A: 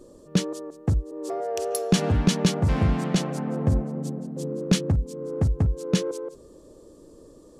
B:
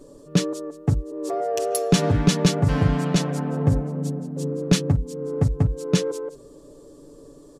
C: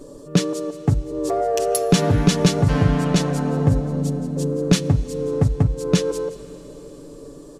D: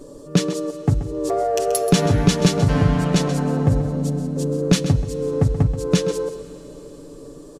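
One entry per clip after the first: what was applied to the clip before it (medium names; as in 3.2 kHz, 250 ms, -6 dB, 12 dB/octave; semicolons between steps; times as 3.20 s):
comb 7 ms, depth 65%; trim +1.5 dB
in parallel at +0.5 dB: compression, threshold -27 dBFS, peak gain reduction 14.5 dB; on the sum: reverberation RT60 4.6 s, pre-delay 8 ms, DRR 16.5 dB
delay 131 ms -12 dB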